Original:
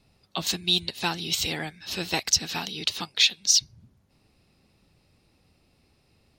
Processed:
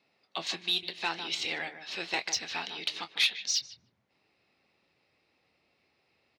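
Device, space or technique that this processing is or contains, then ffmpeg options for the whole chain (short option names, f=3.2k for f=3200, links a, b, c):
intercom: -filter_complex "[0:a]asubboost=boost=3.5:cutoff=110,highpass=350,lowpass=4.4k,equalizer=f=2.1k:t=o:w=0.51:g=5.5,asplit=2[a][b];[b]adelay=151,lowpass=f=1.3k:p=1,volume=-9dB,asplit=2[c][d];[d]adelay=151,lowpass=f=1.3k:p=1,volume=0.15[e];[a][c][e]amix=inputs=3:normalize=0,asoftclip=type=tanh:threshold=-12dB,asplit=2[f][g];[g]adelay=24,volume=-12dB[h];[f][h]amix=inputs=2:normalize=0,volume=-4dB"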